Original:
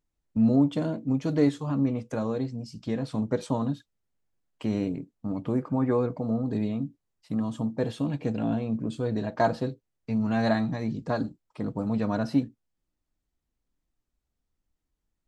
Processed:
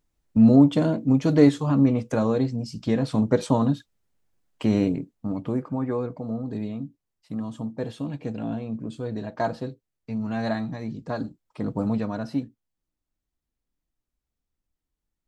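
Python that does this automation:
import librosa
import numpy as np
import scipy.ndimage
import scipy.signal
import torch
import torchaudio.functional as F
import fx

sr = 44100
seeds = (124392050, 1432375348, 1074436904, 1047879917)

y = fx.gain(x, sr, db=fx.line((4.85, 6.5), (5.88, -2.5), (11.05, -2.5), (11.86, 4.5), (12.12, -3.0)))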